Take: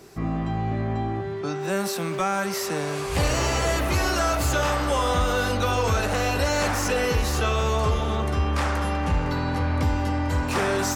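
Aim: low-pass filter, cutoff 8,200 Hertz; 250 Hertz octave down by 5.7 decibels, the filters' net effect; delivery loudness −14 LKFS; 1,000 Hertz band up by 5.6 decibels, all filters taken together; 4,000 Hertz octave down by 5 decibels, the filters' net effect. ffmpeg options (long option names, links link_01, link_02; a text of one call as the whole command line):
ffmpeg -i in.wav -af "lowpass=8200,equalizer=frequency=250:width_type=o:gain=-8.5,equalizer=frequency=1000:width_type=o:gain=8,equalizer=frequency=4000:width_type=o:gain=-7,volume=9dB" out.wav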